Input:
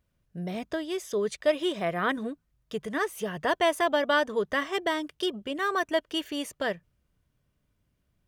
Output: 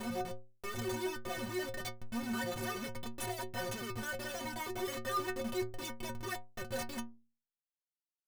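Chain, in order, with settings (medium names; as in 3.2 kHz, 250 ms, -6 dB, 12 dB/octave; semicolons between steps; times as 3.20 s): slices played last to first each 106 ms, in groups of 6; Schmitt trigger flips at -38.5 dBFS; inharmonic resonator 110 Hz, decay 0.44 s, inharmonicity 0.03; trim +4 dB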